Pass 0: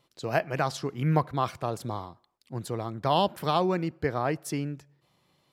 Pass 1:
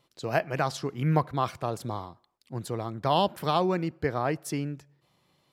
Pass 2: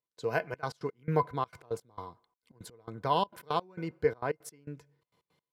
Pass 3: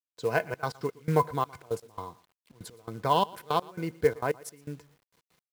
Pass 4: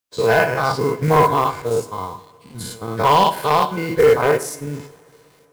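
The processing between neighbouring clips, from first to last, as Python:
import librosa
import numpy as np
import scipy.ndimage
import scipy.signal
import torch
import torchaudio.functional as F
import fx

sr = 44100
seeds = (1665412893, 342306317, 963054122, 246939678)

y1 = x
y2 = fx.small_body(y1, sr, hz=(460.0, 1000.0, 1500.0, 2100.0), ring_ms=90, db=13)
y2 = fx.step_gate(y2, sr, bpm=167, pattern='..xxxx.x.x', floor_db=-24.0, edge_ms=4.5)
y2 = y2 * librosa.db_to_amplitude(-6.5)
y3 = fx.echo_feedback(y2, sr, ms=117, feedback_pct=19, wet_db=-22.5)
y3 = fx.quant_companded(y3, sr, bits=6)
y3 = y3 * librosa.db_to_amplitude(3.5)
y4 = fx.spec_dilate(y3, sr, span_ms=120)
y4 = fx.rev_double_slope(y4, sr, seeds[0], early_s=0.47, late_s=3.3, knee_db=-22, drr_db=9.0)
y4 = np.clip(y4, -10.0 ** (-14.5 / 20.0), 10.0 ** (-14.5 / 20.0))
y4 = y4 * librosa.db_to_amplitude(7.0)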